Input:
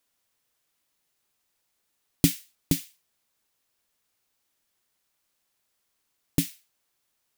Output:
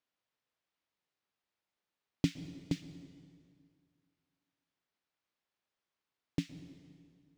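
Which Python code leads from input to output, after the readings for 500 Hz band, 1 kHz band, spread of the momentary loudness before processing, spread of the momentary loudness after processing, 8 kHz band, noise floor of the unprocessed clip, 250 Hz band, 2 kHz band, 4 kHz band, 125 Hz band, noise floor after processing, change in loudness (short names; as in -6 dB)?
-8.0 dB, -8.0 dB, 8 LU, 19 LU, -22.0 dB, -77 dBFS, -8.0 dB, -9.0 dB, -12.0 dB, -8.5 dB, under -85 dBFS, -11.0 dB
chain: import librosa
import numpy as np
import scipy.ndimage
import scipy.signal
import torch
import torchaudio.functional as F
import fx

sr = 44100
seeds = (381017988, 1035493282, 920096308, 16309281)

y = fx.highpass(x, sr, hz=94.0, slope=6)
y = fx.air_absorb(y, sr, metres=160.0)
y = fx.rev_plate(y, sr, seeds[0], rt60_s=2.2, hf_ratio=0.75, predelay_ms=105, drr_db=12.0)
y = y * 10.0 ** (-7.5 / 20.0)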